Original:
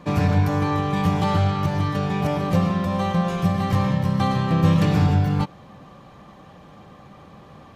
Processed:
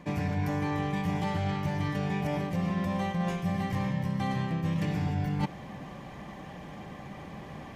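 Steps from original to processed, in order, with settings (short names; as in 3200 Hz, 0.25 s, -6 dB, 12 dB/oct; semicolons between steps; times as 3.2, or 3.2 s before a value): thirty-one-band EQ 100 Hz -5 dB, 500 Hz -4 dB, 1250 Hz -9 dB, 2000 Hz +6 dB, 4000 Hz -5 dB; reverse; compressor 12:1, threshold -30 dBFS, peak gain reduction 17.5 dB; reverse; gain +3.5 dB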